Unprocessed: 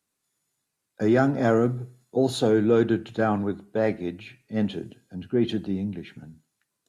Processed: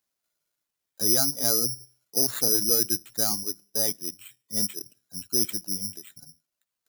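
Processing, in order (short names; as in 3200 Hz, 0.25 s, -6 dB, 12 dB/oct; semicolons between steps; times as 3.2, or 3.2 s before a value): reverb removal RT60 0.94 s; careless resampling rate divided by 8×, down none, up zero stuff; gain -10.5 dB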